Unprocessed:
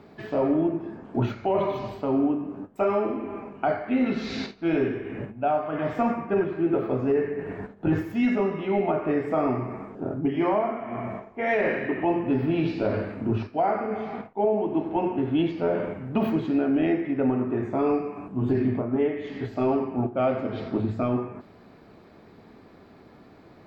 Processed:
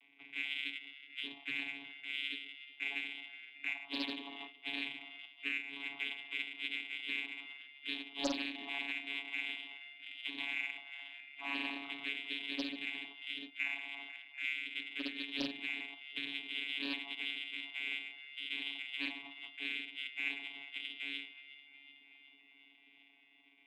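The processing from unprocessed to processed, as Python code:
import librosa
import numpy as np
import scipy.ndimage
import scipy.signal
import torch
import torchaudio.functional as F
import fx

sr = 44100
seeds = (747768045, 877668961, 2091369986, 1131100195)

p1 = fx.env_phaser(x, sr, low_hz=170.0, high_hz=1300.0, full_db=-23.0)
p2 = fx.high_shelf(p1, sr, hz=2100.0, db=-10.5)
p3 = fx.freq_invert(p2, sr, carrier_hz=3000)
p4 = fx.vowel_filter(p3, sr, vowel='u')
p5 = fx.peak_eq(p4, sr, hz=300.0, db=12.0, octaves=0.5)
p6 = fx.vocoder(p5, sr, bands=16, carrier='saw', carrier_hz=140.0)
p7 = fx.echo_thinned(p6, sr, ms=370, feedback_pct=69, hz=490.0, wet_db=-17.0)
p8 = 10.0 ** (-40.0 / 20.0) * np.tanh(p7 / 10.0 ** (-40.0 / 20.0))
p9 = p7 + F.gain(torch.from_numpy(p8), -12.0).numpy()
y = fx.doppler_dist(p9, sr, depth_ms=0.74)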